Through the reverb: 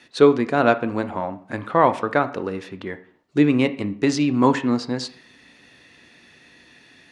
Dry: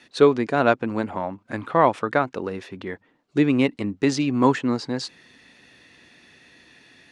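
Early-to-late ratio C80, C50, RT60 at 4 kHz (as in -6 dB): 19.0 dB, 16.0 dB, 0.45 s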